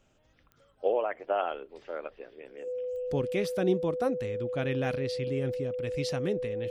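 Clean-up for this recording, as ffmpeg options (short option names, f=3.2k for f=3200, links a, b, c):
-af "adeclick=t=4,bandreject=f=500:w=30"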